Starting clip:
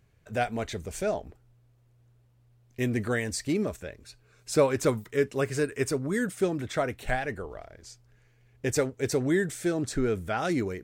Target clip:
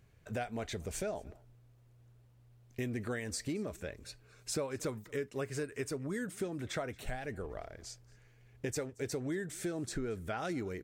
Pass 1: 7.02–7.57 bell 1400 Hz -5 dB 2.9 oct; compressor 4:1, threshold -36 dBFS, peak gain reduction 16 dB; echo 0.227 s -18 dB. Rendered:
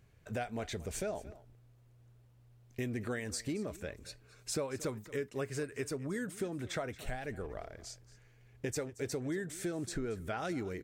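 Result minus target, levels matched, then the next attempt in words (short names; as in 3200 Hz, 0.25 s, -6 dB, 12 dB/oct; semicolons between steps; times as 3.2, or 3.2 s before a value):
echo-to-direct +6.5 dB
7.02–7.57 bell 1400 Hz -5 dB 2.9 oct; compressor 4:1, threshold -36 dBFS, peak gain reduction 16 dB; echo 0.227 s -24.5 dB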